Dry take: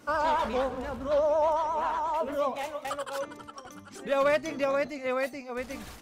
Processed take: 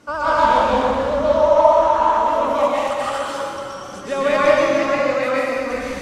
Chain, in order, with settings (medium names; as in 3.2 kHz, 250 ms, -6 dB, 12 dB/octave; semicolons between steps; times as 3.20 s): low-pass 9.2 kHz 12 dB/octave; plate-style reverb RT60 2 s, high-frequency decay 0.95×, pre-delay 110 ms, DRR -8 dB; trim +3 dB